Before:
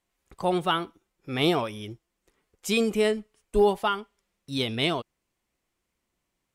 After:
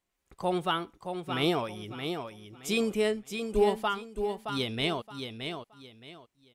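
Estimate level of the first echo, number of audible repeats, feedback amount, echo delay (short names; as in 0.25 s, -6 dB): -7.0 dB, 3, 26%, 0.621 s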